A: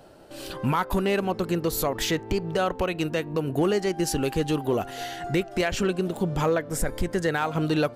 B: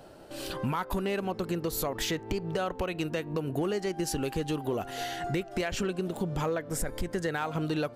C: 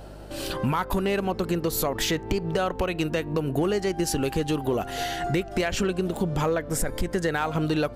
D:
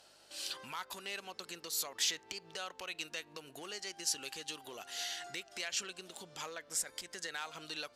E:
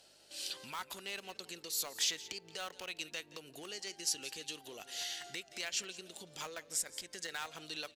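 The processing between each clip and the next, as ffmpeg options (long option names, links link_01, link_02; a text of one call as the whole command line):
ffmpeg -i in.wav -af "acompressor=threshold=-30dB:ratio=2.5" out.wav
ffmpeg -i in.wav -af "aeval=exprs='val(0)+0.00398*(sin(2*PI*50*n/s)+sin(2*PI*2*50*n/s)/2+sin(2*PI*3*50*n/s)/3+sin(2*PI*4*50*n/s)/4+sin(2*PI*5*50*n/s)/5)':channel_layout=same,volume=5.5dB" out.wav
ffmpeg -i in.wav -af "bandpass=frequency=5600:width_type=q:width=0.98:csg=0,volume=-2dB" out.wav
ffmpeg -i in.wav -filter_complex "[0:a]aecho=1:1:174:0.141,acrossover=split=850|1500[link_01][link_02][link_03];[link_02]acrusher=bits=7:mix=0:aa=0.000001[link_04];[link_01][link_04][link_03]amix=inputs=3:normalize=0" out.wav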